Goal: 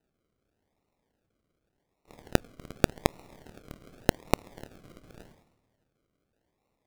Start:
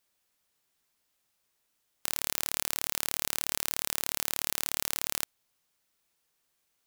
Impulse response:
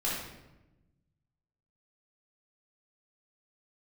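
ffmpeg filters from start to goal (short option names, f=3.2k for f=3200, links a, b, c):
-filter_complex "[0:a]equalizer=f=2.1k:w=1.2:g=3,asplit=2[a][b];[1:a]atrim=start_sample=2205,highshelf=f=5.6k:g=-6.5[c];[b][c]afir=irnorm=-1:irlink=0,volume=-19dB[d];[a][d]amix=inputs=2:normalize=0,acrusher=samples=39:mix=1:aa=0.000001:lfo=1:lforange=23.4:lforate=0.86,volume=-2.5dB"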